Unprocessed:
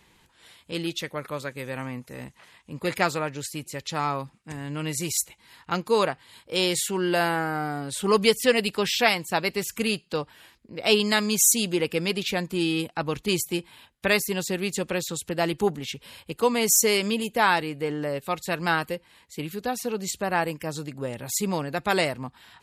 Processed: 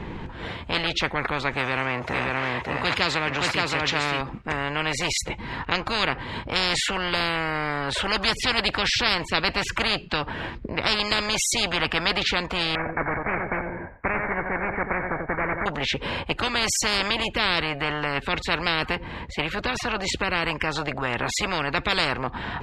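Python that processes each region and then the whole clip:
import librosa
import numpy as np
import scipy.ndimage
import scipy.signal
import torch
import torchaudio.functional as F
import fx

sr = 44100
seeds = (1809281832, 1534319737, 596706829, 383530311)

y = fx.chain(x, sr, fx.law_mismatch(coded='mu'),
    fx.highpass(hz=74.0, slope=24),
    fx.echo_single(ms=571, db=-5.0), at=(1.53, 4.21))
y = fx.chain(y, sr, fx.block_float(bits=3),
    fx.cheby_ripple(hz=2300.0, ripple_db=9),
    fx.echo_feedback(ms=89, feedback_pct=29, wet_db=-12.0), at=(12.75, 15.66))
y = scipy.signal.sosfilt(scipy.signal.bessel(2, 2300.0, 'lowpass', norm='mag', fs=sr, output='sos'), y)
y = fx.tilt_eq(y, sr, slope=-3.0)
y = fx.spectral_comp(y, sr, ratio=10.0)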